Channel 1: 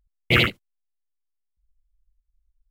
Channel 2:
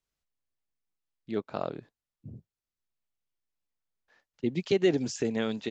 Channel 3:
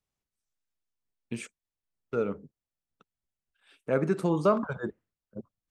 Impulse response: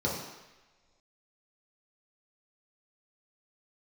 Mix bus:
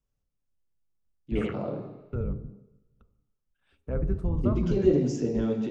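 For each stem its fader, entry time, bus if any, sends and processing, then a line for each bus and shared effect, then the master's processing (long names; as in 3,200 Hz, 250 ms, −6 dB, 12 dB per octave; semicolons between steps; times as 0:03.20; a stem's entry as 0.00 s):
−11.5 dB, 1.05 s, bus A, send −18.5 dB, treble cut that deepens with the level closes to 1,300 Hz, closed at −16.5 dBFS
−6.5 dB, 0.00 s, bus A, send −10.5 dB, low-shelf EQ 440 Hz +10 dB; hard clipping −10 dBFS, distortion −34 dB
−5.5 dB, 0.00 s, no bus, send −21.5 dB, sub-octave generator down 2 octaves, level +2 dB; spectral tilt −3 dB per octave; downward compressor 1.5 to 1, threshold −31 dBFS, peak gain reduction 8 dB
bus A: 0.0 dB, high-pass filter 350 Hz 12 dB per octave; brickwall limiter −27 dBFS, peak gain reduction 9.5 dB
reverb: on, pre-delay 3 ms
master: hum removal 136.2 Hz, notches 9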